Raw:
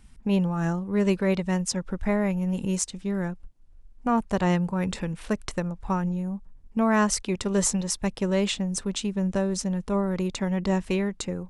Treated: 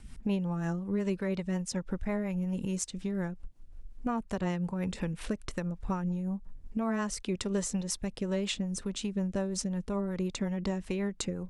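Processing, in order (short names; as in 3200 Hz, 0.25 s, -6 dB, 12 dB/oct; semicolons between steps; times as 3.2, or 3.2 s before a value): compressor 2.5:1, threshold -39 dBFS, peak gain reduction 14 dB; rotary speaker horn 5.5 Hz; gain +6 dB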